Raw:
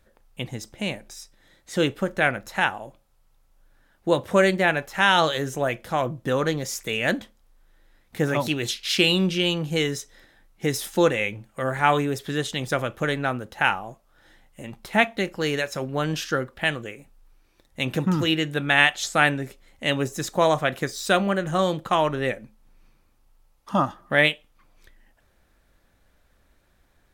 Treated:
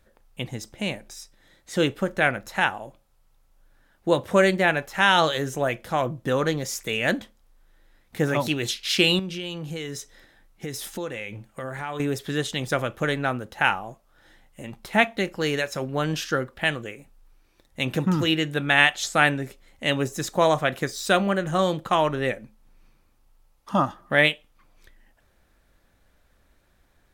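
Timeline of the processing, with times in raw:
9.19–12 compressor 4:1, threshold -30 dBFS

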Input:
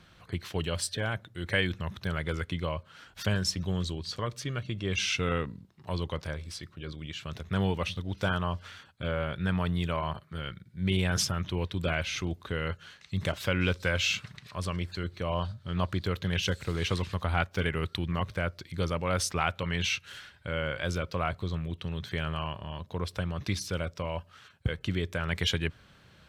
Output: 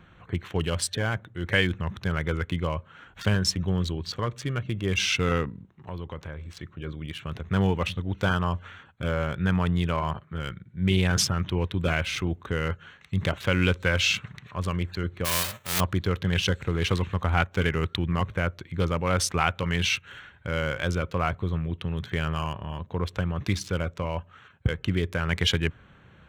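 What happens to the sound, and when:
5.49–6.57 compressor 2:1, threshold -41 dBFS
15.24–15.79 spectral whitening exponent 0.1
whole clip: Wiener smoothing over 9 samples; bell 620 Hz -4 dB 0.27 oct; gain +5 dB

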